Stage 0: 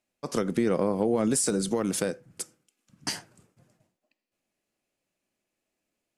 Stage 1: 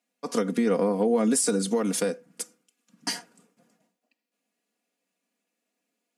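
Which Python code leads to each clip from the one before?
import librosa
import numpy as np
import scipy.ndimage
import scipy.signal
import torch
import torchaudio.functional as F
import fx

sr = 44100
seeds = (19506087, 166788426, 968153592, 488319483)

y = scipy.signal.sosfilt(scipy.signal.butter(4, 180.0, 'highpass', fs=sr, output='sos'), x)
y = y + 0.65 * np.pad(y, (int(4.2 * sr / 1000.0), 0))[:len(y)]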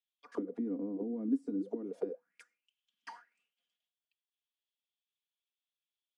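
y = fx.auto_wah(x, sr, base_hz=280.0, top_hz=3400.0, q=9.4, full_db=-20.5, direction='down')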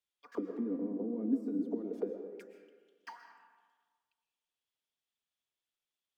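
y = fx.rev_freeverb(x, sr, rt60_s=1.5, hf_ratio=0.55, predelay_ms=85, drr_db=6.5)
y = np.interp(np.arange(len(y)), np.arange(len(y))[::2], y[::2])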